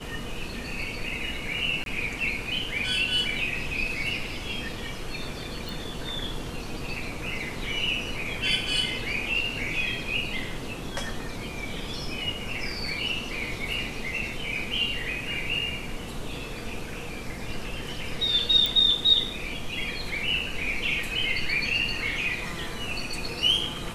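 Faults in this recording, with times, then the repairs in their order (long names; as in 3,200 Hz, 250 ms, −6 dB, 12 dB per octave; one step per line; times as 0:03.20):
0:01.84–0:01.86: drop-out 22 ms
0:05.69: click
0:18.66: click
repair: click removal
repair the gap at 0:01.84, 22 ms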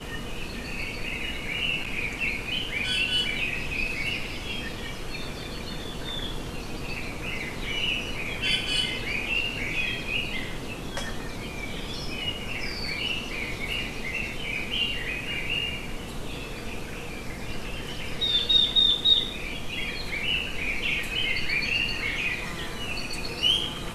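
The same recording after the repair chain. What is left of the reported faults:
none of them is left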